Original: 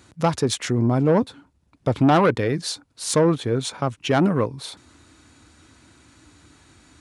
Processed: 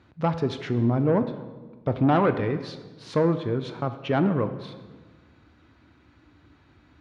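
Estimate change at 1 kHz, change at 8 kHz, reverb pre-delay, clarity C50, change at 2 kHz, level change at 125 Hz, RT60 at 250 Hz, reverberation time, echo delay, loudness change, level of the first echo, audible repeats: -4.5 dB, under -25 dB, 16 ms, 11.0 dB, -5.5 dB, -3.0 dB, 1.7 s, 1.4 s, none, -3.5 dB, none, none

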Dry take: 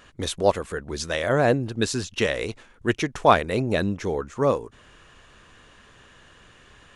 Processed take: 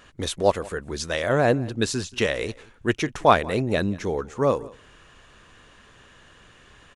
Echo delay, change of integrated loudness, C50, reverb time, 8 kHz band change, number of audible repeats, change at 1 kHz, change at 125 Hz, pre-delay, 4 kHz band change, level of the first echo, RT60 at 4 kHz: 0.179 s, 0.0 dB, none, none, 0.0 dB, 1, 0.0 dB, 0.0 dB, none, 0.0 dB, -22.0 dB, none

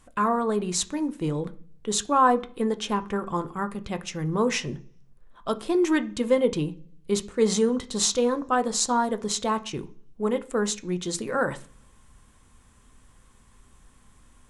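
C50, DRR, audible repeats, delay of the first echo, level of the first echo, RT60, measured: 19.0 dB, 8.5 dB, none, none, none, 0.45 s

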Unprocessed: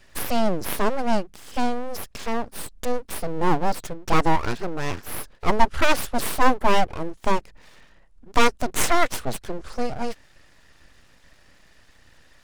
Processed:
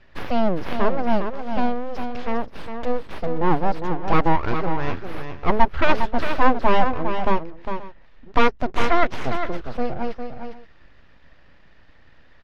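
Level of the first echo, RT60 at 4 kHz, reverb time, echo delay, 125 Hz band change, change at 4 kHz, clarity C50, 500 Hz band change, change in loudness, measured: -7.5 dB, none, none, 0.405 s, +3.0 dB, -4.0 dB, none, +2.0 dB, +1.0 dB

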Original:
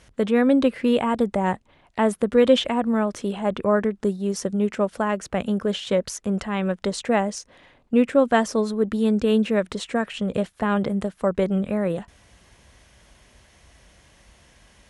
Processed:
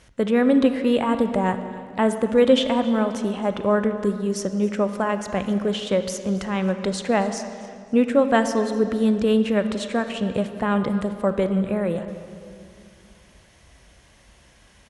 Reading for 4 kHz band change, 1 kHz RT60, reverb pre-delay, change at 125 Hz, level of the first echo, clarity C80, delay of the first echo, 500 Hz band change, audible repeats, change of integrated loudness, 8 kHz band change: +0.5 dB, 2.0 s, 30 ms, +1.0 dB, -20.0 dB, 10.0 dB, 0.272 s, +0.5 dB, 2, +0.5 dB, 0.0 dB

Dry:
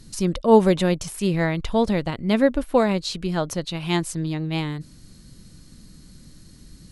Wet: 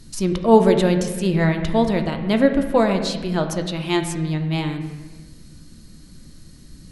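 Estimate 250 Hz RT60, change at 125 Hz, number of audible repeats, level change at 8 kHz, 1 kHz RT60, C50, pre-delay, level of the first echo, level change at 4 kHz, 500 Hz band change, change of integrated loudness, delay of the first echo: 1.9 s, +3.0 dB, none, +1.0 dB, 1.2 s, 8.0 dB, 3 ms, none, +1.5 dB, +2.0 dB, +2.5 dB, none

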